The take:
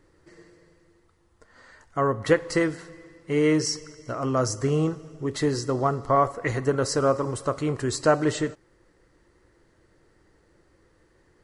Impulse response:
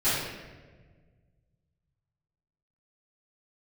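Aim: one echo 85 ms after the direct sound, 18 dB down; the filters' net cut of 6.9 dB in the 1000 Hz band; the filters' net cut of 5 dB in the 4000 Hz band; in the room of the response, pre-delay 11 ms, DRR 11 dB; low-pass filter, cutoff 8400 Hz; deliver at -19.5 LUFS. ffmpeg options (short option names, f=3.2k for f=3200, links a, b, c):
-filter_complex "[0:a]lowpass=8.4k,equalizer=f=1k:t=o:g=-9,equalizer=f=4k:t=o:g=-6.5,aecho=1:1:85:0.126,asplit=2[a][b];[1:a]atrim=start_sample=2205,adelay=11[c];[b][c]afir=irnorm=-1:irlink=0,volume=-24dB[d];[a][d]amix=inputs=2:normalize=0,volume=7dB"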